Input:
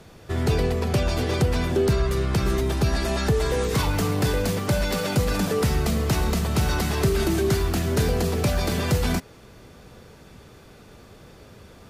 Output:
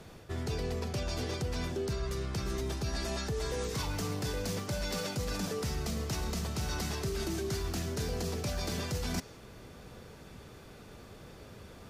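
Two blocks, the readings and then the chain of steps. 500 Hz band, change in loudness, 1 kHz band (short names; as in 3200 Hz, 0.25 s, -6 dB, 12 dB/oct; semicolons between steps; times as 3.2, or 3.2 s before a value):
-12.0 dB, -11.5 dB, -12.0 dB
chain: dynamic EQ 5700 Hz, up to +7 dB, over -50 dBFS, Q 1.3; reverse; compressor 6:1, threshold -29 dBFS, peak gain reduction 12 dB; reverse; gain -3 dB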